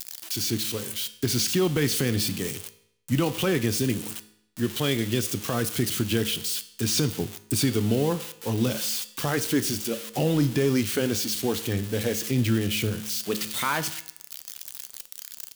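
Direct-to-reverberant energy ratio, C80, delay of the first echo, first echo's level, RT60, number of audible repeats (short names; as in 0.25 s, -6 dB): 11.0 dB, 17.5 dB, none, none, 0.75 s, none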